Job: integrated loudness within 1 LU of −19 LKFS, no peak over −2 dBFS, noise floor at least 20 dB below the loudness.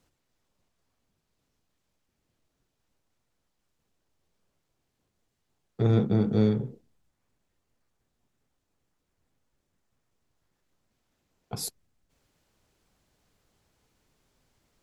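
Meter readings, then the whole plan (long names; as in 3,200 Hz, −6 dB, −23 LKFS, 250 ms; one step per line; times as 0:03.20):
integrated loudness −26.5 LKFS; sample peak −13.0 dBFS; target loudness −19.0 LKFS
→ level +7.5 dB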